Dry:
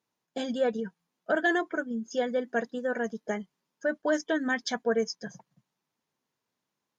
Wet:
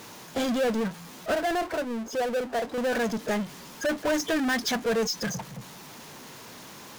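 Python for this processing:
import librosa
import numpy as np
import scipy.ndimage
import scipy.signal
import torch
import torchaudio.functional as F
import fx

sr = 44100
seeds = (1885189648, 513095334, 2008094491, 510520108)

y = fx.bandpass_q(x, sr, hz=690.0, q=1.9, at=(1.34, 2.78))
y = fx.power_curve(y, sr, exponent=0.35)
y = F.gain(torch.from_numpy(y), -4.0).numpy()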